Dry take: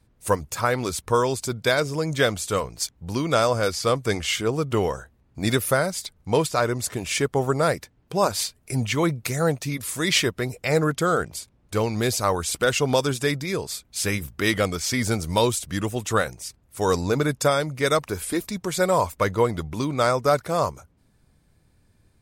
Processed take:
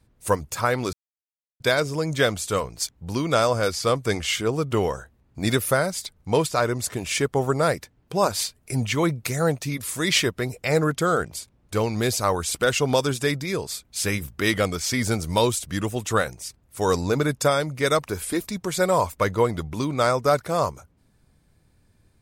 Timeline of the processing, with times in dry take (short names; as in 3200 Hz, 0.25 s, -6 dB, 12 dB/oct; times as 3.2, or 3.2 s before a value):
0.93–1.6 mute